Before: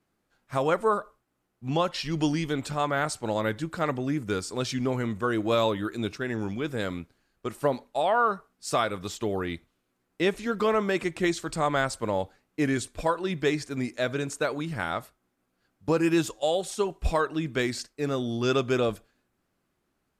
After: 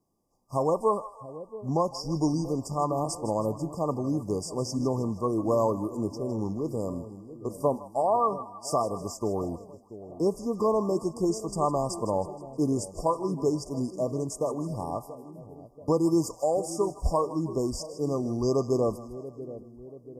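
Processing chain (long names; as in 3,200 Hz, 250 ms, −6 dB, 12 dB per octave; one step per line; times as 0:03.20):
0:16.28–0:17.08: surface crackle 100 per second −54 dBFS
brick-wall band-stop 1,200–4,700 Hz
echo with a time of its own for lows and highs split 660 Hz, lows 683 ms, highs 158 ms, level −14 dB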